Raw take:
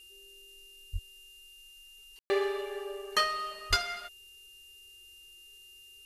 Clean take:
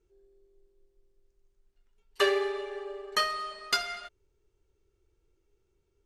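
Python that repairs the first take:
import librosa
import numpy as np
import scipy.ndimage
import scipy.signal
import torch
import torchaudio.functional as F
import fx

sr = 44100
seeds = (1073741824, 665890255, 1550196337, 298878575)

y = fx.notch(x, sr, hz=2800.0, q=30.0)
y = fx.highpass(y, sr, hz=140.0, slope=24, at=(0.92, 1.04), fade=0.02)
y = fx.highpass(y, sr, hz=140.0, slope=24, at=(3.69, 3.81), fade=0.02)
y = fx.fix_ambience(y, sr, seeds[0], print_start_s=5.36, print_end_s=5.86, start_s=2.19, end_s=2.3)
y = fx.noise_reduce(y, sr, print_start_s=5.36, print_end_s=5.86, reduce_db=19.0)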